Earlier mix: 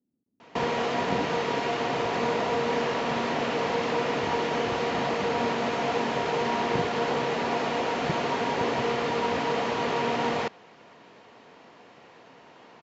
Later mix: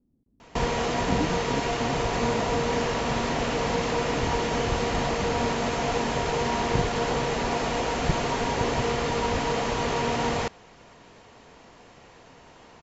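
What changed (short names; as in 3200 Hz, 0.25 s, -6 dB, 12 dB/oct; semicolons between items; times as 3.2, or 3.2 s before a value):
speech +7.5 dB; master: remove BPF 180–4300 Hz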